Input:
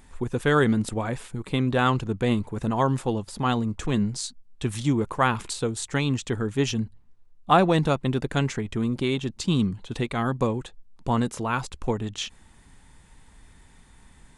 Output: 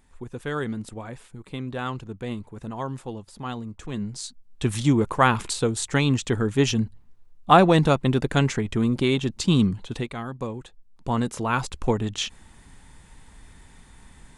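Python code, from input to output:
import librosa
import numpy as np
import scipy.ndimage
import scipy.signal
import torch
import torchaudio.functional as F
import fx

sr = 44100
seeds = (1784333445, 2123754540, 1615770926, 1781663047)

y = fx.gain(x, sr, db=fx.line((3.85, -8.5), (4.67, 3.5), (9.81, 3.5), (10.27, -8.5), (11.66, 3.5)))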